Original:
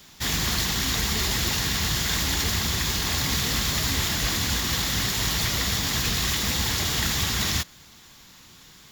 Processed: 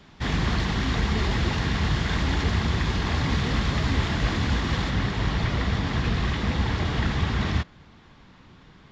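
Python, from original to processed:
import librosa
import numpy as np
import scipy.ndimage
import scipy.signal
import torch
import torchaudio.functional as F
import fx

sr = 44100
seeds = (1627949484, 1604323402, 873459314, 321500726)

y = fx.spacing_loss(x, sr, db_at_10k=fx.steps((0.0, 34.0), (4.89, 41.0)))
y = F.gain(torch.from_numpy(y), 5.5).numpy()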